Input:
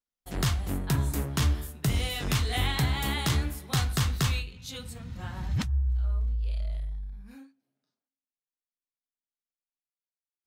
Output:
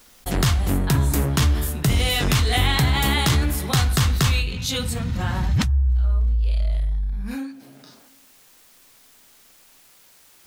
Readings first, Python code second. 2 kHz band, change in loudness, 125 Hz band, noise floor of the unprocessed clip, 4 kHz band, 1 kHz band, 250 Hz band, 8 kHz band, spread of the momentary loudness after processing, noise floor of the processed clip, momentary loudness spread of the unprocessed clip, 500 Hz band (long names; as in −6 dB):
+9.0 dB, +8.0 dB, +8.0 dB, below −85 dBFS, +9.0 dB, +9.0 dB, +9.0 dB, +8.5 dB, 7 LU, −53 dBFS, 12 LU, +9.5 dB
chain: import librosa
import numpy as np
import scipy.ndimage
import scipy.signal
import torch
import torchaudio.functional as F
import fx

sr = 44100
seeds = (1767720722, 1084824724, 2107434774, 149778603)

y = fx.env_flatten(x, sr, amount_pct=50)
y = F.gain(torch.from_numpy(y), 5.5).numpy()